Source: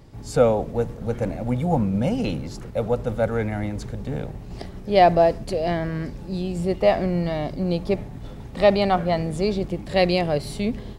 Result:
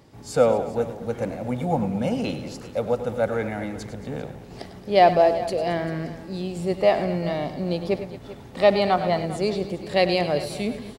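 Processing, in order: HPF 230 Hz 6 dB/oct; tapped delay 99/111/223/394 ms -13.5/-16.5/-16.5/-17 dB

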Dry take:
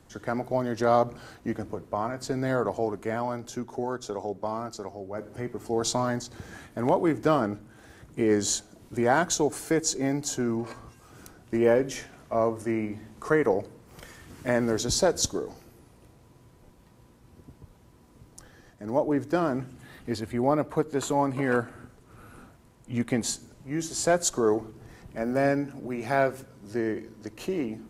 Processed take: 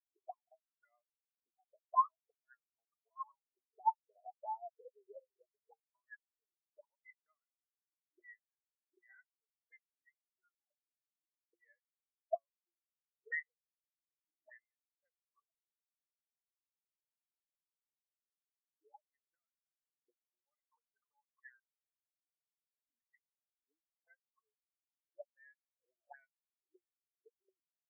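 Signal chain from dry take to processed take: auto-wah 270–2000 Hz, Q 11, up, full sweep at -21.5 dBFS; spectral expander 4:1; gain +4 dB

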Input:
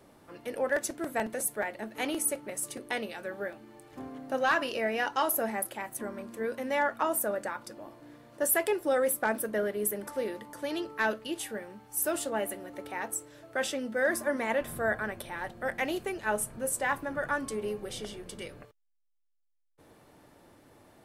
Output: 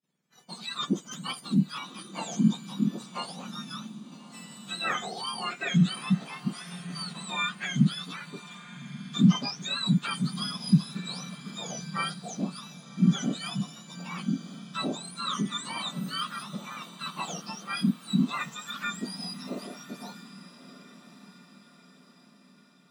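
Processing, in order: spectrum mirrored in octaves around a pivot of 1500 Hz; expander -47 dBFS; on a send: diffused feedback echo 1.077 s, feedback 49%, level -15 dB; on the sum: speed mistake 48 kHz file played as 44.1 kHz; high shelf 9400 Hz -4.5 dB

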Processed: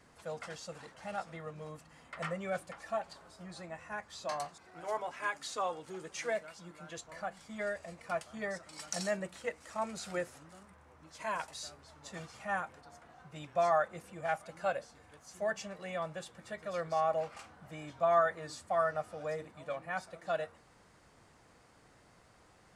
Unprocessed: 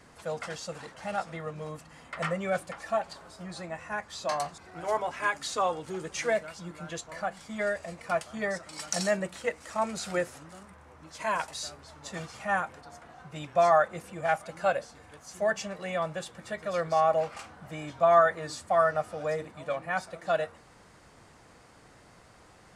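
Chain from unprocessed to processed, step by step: 4.45–6.97 low shelf 130 Hz -9.5 dB; gain -7 dB

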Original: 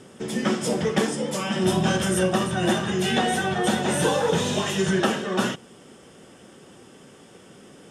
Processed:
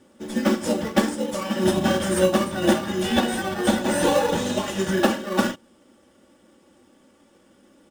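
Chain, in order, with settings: comb 3.5 ms, depth 77%; in parallel at -4 dB: sample-and-hold 13×; on the sum: upward expander 1.5:1, over -36 dBFS; gain -1.5 dB

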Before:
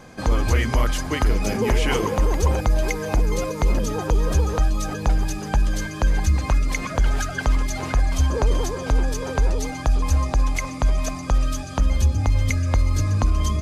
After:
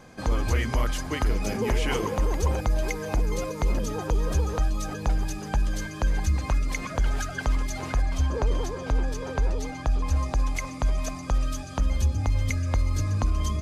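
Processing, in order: 8.02–10.16 high shelf 6800 Hz -8 dB; gain -5 dB

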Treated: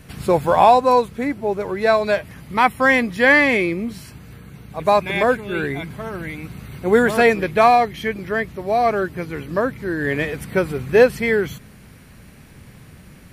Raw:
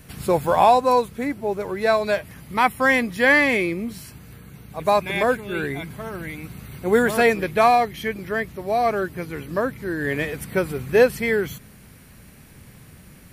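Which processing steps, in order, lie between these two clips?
high shelf 8700 Hz -9.5 dB; gain +3 dB

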